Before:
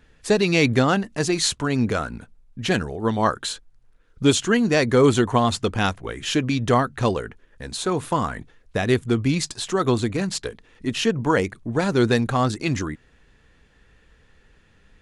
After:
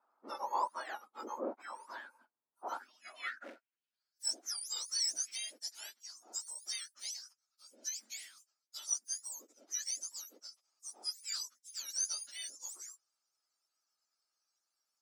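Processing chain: spectrum mirrored in octaves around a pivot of 1500 Hz; 3.28–4.26 short-mantissa float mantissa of 2-bit; band-pass sweep 1000 Hz -> 6000 Hz, 3.12–4.23; gain -8 dB

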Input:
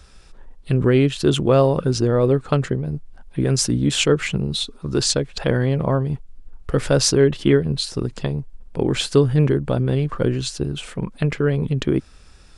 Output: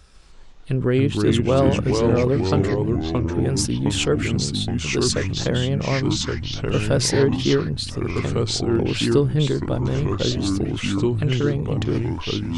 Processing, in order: vibrato 9.5 Hz 22 cents; echoes that change speed 0.145 s, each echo -3 st, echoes 3; gain -3.5 dB

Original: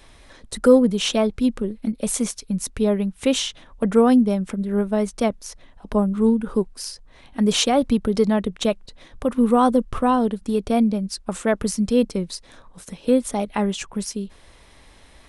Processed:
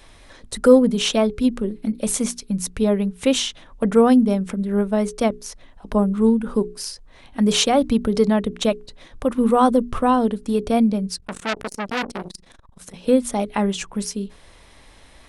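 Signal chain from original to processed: notches 60/120/180/240/300/360/420 Hz; 11.13–12.94 core saturation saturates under 2700 Hz; gain +1.5 dB

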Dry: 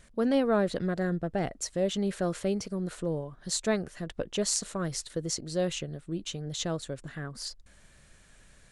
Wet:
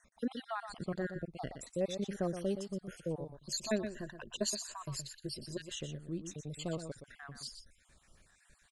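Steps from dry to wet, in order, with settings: random spectral dropouts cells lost 47%; 3.36–5.63 ripple EQ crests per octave 1.4, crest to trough 11 dB; echo 0.121 s -9 dB; gain -5.5 dB

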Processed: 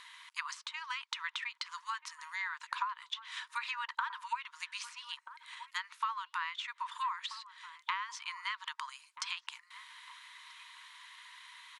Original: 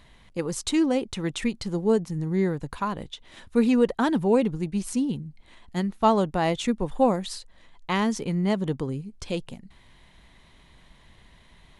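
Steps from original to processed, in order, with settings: brick-wall FIR high-pass 910 Hz; compressor 8:1, threshold -39 dBFS, peak gain reduction 16 dB; treble ducked by the level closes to 2600 Hz, closed at -39 dBFS; outdoor echo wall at 220 m, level -12 dB; gain +6.5 dB

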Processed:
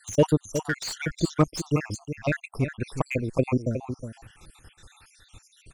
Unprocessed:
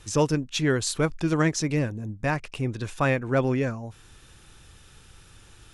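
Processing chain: random spectral dropouts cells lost 74%; echo 0.364 s -9.5 dB; slew limiter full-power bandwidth 89 Hz; gain +4.5 dB

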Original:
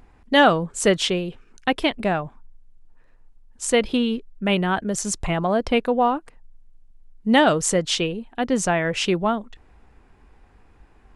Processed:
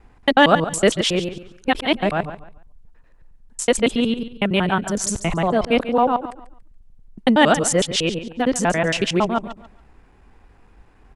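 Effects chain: local time reversal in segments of 92 ms; feedback echo 0.141 s, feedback 26%, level -13.5 dB; gain +2 dB

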